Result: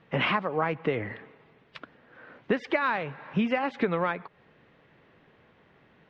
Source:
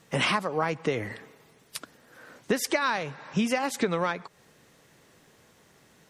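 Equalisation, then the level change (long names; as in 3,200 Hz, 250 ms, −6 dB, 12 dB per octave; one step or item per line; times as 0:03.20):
low-pass filter 3,000 Hz 24 dB per octave
0.0 dB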